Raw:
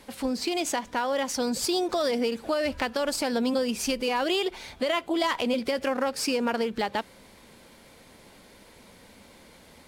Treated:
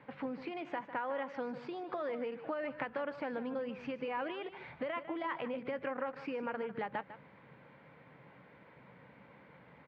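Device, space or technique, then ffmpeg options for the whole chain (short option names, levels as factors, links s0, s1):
bass amplifier: -filter_complex "[0:a]asettb=1/sr,asplit=3[s0][s1][s2];[s0]atrim=end=0.804[s3];[s1]atrim=start=0.8:end=2.81,asetpts=PTS-STARTPTS,afade=t=in:d=0.004:c=qsin,afade=t=out:st=2.006:d=0.004:c=qsin,highpass=170[s4];[s2]atrim=start=2.806[s5];[s3][s4]acrossfade=d=0.004:c1=hsin:c2=qsin[s6];[s6][s5]acrossfade=d=0.004:c1=qsin:c2=hsin,acompressor=threshold=0.0355:ratio=6,highpass=f=88:w=0.5412,highpass=f=88:w=1.3066,equalizer=f=93:t=q:w=4:g=-9,equalizer=f=140:t=q:w=4:g=10,equalizer=f=230:t=q:w=4:g=-7,equalizer=f=370:t=q:w=4:g=-7,equalizer=f=670:t=q:w=4:g=-4,lowpass=f=2200:w=0.5412,lowpass=f=2200:w=1.3066,aecho=1:1:151:0.237,volume=0.708"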